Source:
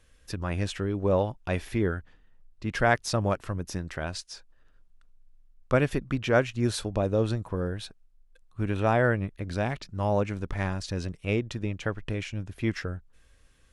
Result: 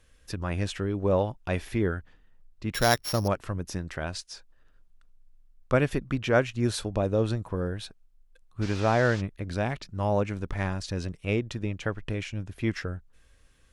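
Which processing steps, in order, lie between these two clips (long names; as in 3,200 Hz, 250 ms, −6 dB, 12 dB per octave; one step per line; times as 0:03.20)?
0:02.74–0:03.28: samples sorted by size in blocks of 8 samples
0:08.61–0:09.20: noise in a band 490–5,900 Hz −44 dBFS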